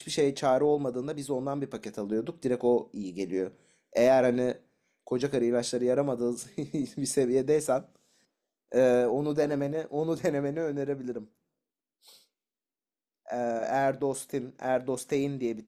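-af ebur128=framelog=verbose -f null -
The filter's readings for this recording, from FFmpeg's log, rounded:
Integrated loudness:
  I:         -29.0 LUFS
  Threshold: -39.5 LUFS
Loudness range:
  LRA:         6.3 LU
  Threshold: -49.9 LUFS
  LRA low:   -34.5 LUFS
  LRA high:  -28.2 LUFS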